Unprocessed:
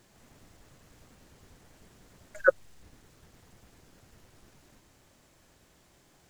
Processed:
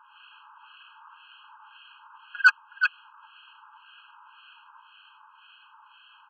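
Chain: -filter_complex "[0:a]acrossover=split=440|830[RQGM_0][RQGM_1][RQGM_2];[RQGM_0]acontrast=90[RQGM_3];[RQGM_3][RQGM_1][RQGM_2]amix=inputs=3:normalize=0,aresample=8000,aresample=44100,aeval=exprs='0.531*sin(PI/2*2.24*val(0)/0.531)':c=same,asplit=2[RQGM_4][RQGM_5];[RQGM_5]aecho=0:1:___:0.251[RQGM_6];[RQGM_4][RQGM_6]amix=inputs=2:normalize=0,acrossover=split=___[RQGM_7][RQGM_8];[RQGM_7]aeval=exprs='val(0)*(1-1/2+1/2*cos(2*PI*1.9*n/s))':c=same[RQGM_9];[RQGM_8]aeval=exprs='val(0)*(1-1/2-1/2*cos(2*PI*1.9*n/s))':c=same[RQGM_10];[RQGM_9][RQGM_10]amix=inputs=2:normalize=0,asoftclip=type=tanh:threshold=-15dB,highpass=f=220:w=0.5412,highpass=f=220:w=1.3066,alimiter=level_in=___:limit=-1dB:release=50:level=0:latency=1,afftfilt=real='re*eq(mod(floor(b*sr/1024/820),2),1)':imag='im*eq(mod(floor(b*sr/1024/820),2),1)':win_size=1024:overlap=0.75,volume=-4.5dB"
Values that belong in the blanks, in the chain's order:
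369, 1400, 15.5dB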